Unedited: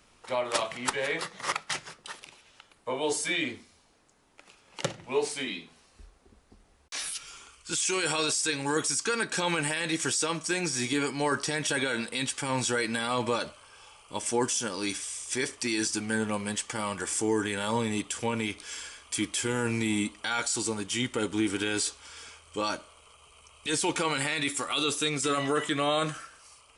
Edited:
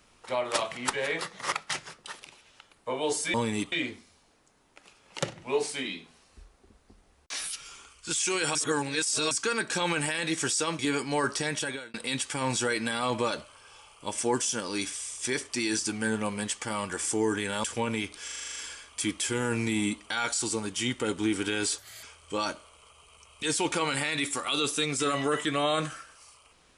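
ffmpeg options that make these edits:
ffmpeg -i in.wav -filter_complex "[0:a]asplit=18[link_01][link_02][link_03][link_04][link_05][link_06][link_07][link_08][link_09][link_10][link_11][link_12][link_13][link_14][link_15][link_16][link_17][link_18];[link_01]atrim=end=3.342[link_19];[link_02]atrim=start=17.718:end=18.102[link_20];[link_03]atrim=start=3.338:end=8.172[link_21];[link_04]atrim=start=8.168:end=8.932,asetpts=PTS-STARTPTS,areverse[link_22];[link_05]atrim=start=8.928:end=10.412[link_23];[link_06]atrim=start=10.868:end=12.02,asetpts=PTS-STARTPTS,afade=type=out:start_time=0.702:duration=0.45[link_24];[link_07]atrim=start=12.02:end=17.722,asetpts=PTS-STARTPTS,afade=type=in:duration=0.004:curve=hsin[link_25];[link_08]atrim=start=18.098:end=18.742[link_26];[link_09]atrim=start=18.698:end=18.742[link_27];[link_10]atrim=start=18.698:end=18.742[link_28];[link_11]atrim=start=18.698:end=18.742[link_29];[link_12]atrim=start=18.698:end=18.742[link_30];[link_13]atrim=start=18.698:end=18.742[link_31];[link_14]atrim=start=18.698:end=18.742[link_32];[link_15]atrim=start=18.698:end=18.742[link_33];[link_16]atrim=start=18.698:end=21.924[link_34];[link_17]atrim=start=21.92:end=22.27,asetpts=PTS-STARTPTS,asetrate=61299,aresample=44100,atrim=end_sample=11104,asetpts=PTS-STARTPTS[link_35];[link_18]atrim=start=22.266[link_36];[link_19][link_20]acrossfade=duration=0.004:curve1=hsin:curve2=hsin[link_37];[link_37][link_21]acrossfade=duration=0.004:curve1=hsin:curve2=hsin[link_38];[link_38][link_22]acrossfade=duration=0.004:curve1=hsin:curve2=hsin[link_39];[link_39][link_23]acrossfade=duration=0.004:curve1=hsin:curve2=hsin[link_40];[link_24][link_25]concat=n=2:v=0:a=1[link_41];[link_40][link_41]acrossfade=duration=0.004:curve1=hsin:curve2=hsin[link_42];[link_42][link_26]acrossfade=duration=0.004:curve1=hsin:curve2=hsin[link_43];[link_43][link_27]acrossfade=duration=0.004:curve1=hsin:curve2=hsin[link_44];[link_44][link_28]acrossfade=duration=0.004:curve1=hsin:curve2=hsin[link_45];[link_45][link_29]acrossfade=duration=0.004:curve1=hsin:curve2=hsin[link_46];[link_46][link_30]acrossfade=duration=0.004:curve1=hsin:curve2=hsin[link_47];[link_47][link_31]acrossfade=duration=0.004:curve1=hsin:curve2=hsin[link_48];[link_48][link_32]acrossfade=duration=0.004:curve1=hsin:curve2=hsin[link_49];[link_49][link_33]acrossfade=duration=0.004:curve1=hsin:curve2=hsin[link_50];[link_50][link_34]acrossfade=duration=0.004:curve1=hsin:curve2=hsin[link_51];[link_51][link_35]acrossfade=duration=0.004:curve1=hsin:curve2=hsin[link_52];[link_52][link_36]acrossfade=duration=0.004:curve1=hsin:curve2=hsin" out.wav

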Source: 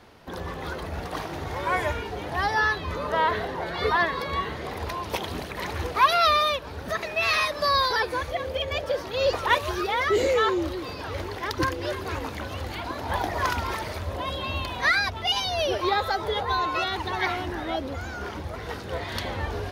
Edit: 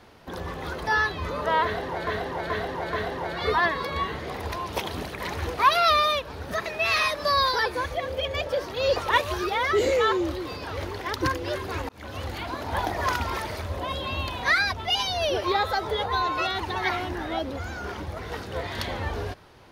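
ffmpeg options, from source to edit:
ffmpeg -i in.wav -filter_complex "[0:a]asplit=6[link_01][link_02][link_03][link_04][link_05][link_06];[link_01]atrim=end=0.872[link_07];[link_02]atrim=start=2.528:end=3.732[link_08];[link_03]atrim=start=3.298:end=3.732[link_09];[link_04]atrim=start=3.298:end=3.732[link_10];[link_05]atrim=start=3.298:end=12.26,asetpts=PTS-STARTPTS,afade=type=out:start_time=8.958:duration=0.004:curve=hsin[link_11];[link_06]atrim=start=12.26,asetpts=PTS-STARTPTS,afade=type=in:duration=0.3[link_12];[link_07][link_08]acrossfade=duration=0.004:curve1=hsin:curve2=hsin[link_13];[link_13][link_09]acrossfade=duration=0.004:curve1=hsin:curve2=hsin[link_14];[link_14][link_10]acrossfade=duration=0.004:curve1=hsin:curve2=hsin[link_15];[link_11][link_12]concat=n=2:v=0:a=1[link_16];[link_15][link_16]acrossfade=duration=0.004:curve1=hsin:curve2=hsin" out.wav

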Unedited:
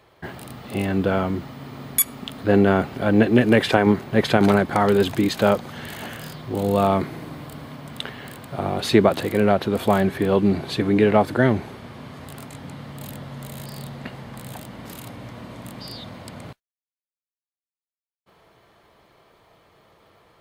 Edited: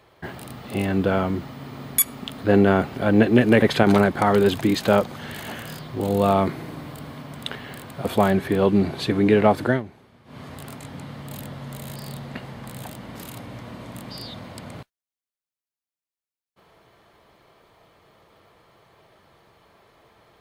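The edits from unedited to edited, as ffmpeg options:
ffmpeg -i in.wav -filter_complex "[0:a]asplit=5[link_01][link_02][link_03][link_04][link_05];[link_01]atrim=end=3.622[link_06];[link_02]atrim=start=4.158:end=8.592[link_07];[link_03]atrim=start=9.748:end=11.52,asetpts=PTS-STARTPTS,afade=type=out:start_time=1.622:duration=0.15:silence=0.177828[link_08];[link_04]atrim=start=11.52:end=11.95,asetpts=PTS-STARTPTS,volume=-15dB[link_09];[link_05]atrim=start=11.95,asetpts=PTS-STARTPTS,afade=type=in:duration=0.15:silence=0.177828[link_10];[link_06][link_07]acrossfade=duration=0.004:curve1=hsin:curve2=hsin[link_11];[link_08][link_09][link_10]concat=n=3:v=0:a=1[link_12];[link_11][link_12]acrossfade=duration=0.004:curve1=hsin:curve2=hsin" out.wav

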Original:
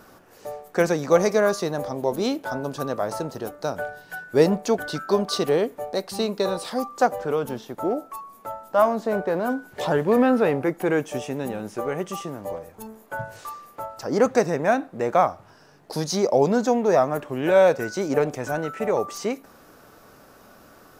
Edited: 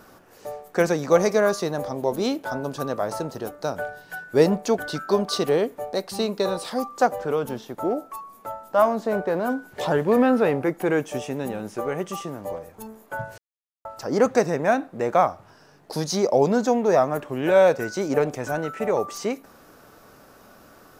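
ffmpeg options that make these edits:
ffmpeg -i in.wav -filter_complex "[0:a]asplit=3[link_01][link_02][link_03];[link_01]atrim=end=13.38,asetpts=PTS-STARTPTS,afade=type=out:start_time=13.376:duration=0.004:curve=hsin[link_04];[link_02]atrim=start=13.38:end=13.85,asetpts=PTS-STARTPTS,volume=0[link_05];[link_03]atrim=start=13.85,asetpts=PTS-STARTPTS,afade=type=in:duration=0.004:curve=hsin[link_06];[link_04][link_05][link_06]concat=n=3:v=0:a=1" out.wav

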